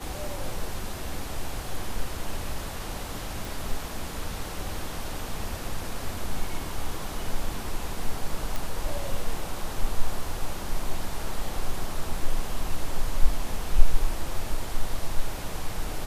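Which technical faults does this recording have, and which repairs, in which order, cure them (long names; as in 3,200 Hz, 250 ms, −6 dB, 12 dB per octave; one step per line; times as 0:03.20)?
0:03.45: click
0:08.56: click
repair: click removal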